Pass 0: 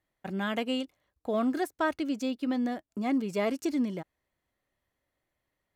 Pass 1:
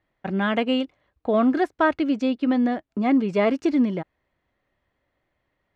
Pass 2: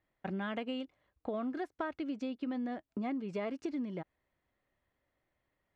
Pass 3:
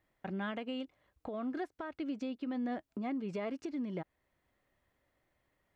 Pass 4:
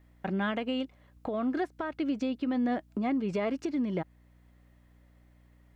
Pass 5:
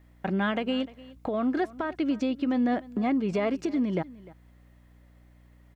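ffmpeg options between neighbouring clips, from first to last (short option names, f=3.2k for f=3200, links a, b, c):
-af "lowpass=3.1k,volume=8.5dB"
-af "acompressor=threshold=-27dB:ratio=6,volume=-7.5dB"
-af "alimiter=level_in=9.5dB:limit=-24dB:level=0:latency=1:release=491,volume=-9.5dB,volume=4dB"
-af "aeval=exprs='val(0)+0.000501*(sin(2*PI*60*n/s)+sin(2*PI*2*60*n/s)/2+sin(2*PI*3*60*n/s)/3+sin(2*PI*4*60*n/s)/4+sin(2*PI*5*60*n/s)/5)':c=same,volume=7.5dB"
-af "aecho=1:1:301:0.1,volume=3.5dB"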